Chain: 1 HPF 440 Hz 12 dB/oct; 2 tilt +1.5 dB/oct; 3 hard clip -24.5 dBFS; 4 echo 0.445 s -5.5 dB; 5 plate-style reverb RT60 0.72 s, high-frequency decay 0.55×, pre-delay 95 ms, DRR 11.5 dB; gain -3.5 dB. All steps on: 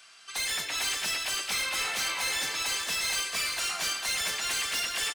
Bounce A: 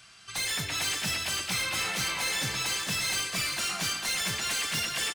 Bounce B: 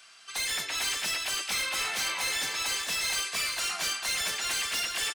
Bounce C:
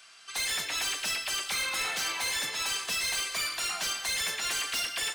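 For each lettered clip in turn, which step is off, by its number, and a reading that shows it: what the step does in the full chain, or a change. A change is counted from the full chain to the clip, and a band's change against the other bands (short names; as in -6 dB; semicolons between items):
1, 125 Hz band +14.0 dB; 5, crest factor change -3.0 dB; 4, echo-to-direct -4.5 dB to -11.5 dB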